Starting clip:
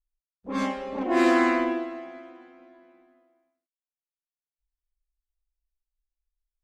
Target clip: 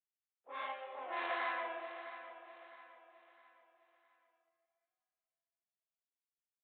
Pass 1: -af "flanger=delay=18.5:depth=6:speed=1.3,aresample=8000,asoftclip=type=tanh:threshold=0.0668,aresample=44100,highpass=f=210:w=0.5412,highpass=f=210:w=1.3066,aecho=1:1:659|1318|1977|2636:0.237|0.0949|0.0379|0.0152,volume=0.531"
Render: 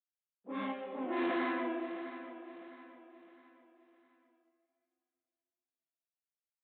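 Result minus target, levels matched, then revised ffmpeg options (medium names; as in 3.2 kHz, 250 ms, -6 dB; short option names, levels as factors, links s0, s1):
250 Hz band +18.0 dB
-af "flanger=delay=18.5:depth=6:speed=1.3,aresample=8000,asoftclip=type=tanh:threshold=0.0668,aresample=44100,highpass=f=610:w=0.5412,highpass=f=610:w=1.3066,aecho=1:1:659|1318|1977|2636:0.237|0.0949|0.0379|0.0152,volume=0.531"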